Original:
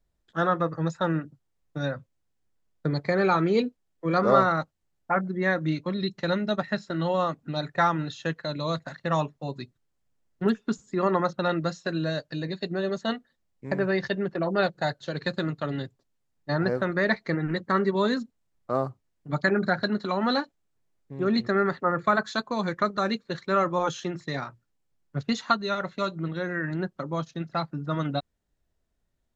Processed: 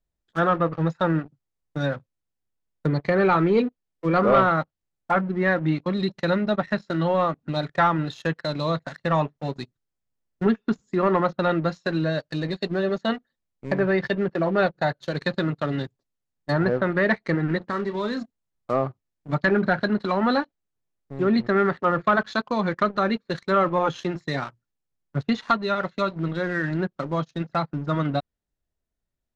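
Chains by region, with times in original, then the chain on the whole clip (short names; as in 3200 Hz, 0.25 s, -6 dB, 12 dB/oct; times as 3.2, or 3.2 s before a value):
17.58–18.22 compressor 2:1, threshold -33 dBFS + doubler 34 ms -12 dB
whole clip: sample leveller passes 2; treble ducked by the level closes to 2900 Hz, closed at -15.5 dBFS; gain -3.5 dB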